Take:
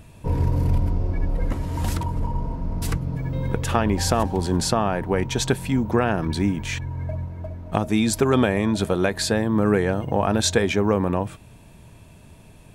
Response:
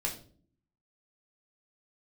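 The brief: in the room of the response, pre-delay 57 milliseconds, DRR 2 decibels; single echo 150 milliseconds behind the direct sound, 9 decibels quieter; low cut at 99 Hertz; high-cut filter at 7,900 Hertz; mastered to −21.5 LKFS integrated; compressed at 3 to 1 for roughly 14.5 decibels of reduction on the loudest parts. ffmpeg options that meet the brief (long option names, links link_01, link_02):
-filter_complex "[0:a]highpass=99,lowpass=7900,acompressor=threshold=-35dB:ratio=3,aecho=1:1:150:0.355,asplit=2[link_01][link_02];[1:a]atrim=start_sample=2205,adelay=57[link_03];[link_02][link_03]afir=irnorm=-1:irlink=0,volume=-5.5dB[link_04];[link_01][link_04]amix=inputs=2:normalize=0,volume=11.5dB"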